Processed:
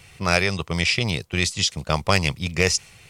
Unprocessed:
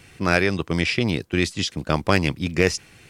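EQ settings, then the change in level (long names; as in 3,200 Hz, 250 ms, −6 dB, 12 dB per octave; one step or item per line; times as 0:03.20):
dynamic equaliser 7,100 Hz, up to +6 dB, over −41 dBFS, Q 0.89
parametric band 290 Hz −13.5 dB 0.88 octaves
parametric band 1,600 Hz −7.5 dB 0.3 octaves
+2.0 dB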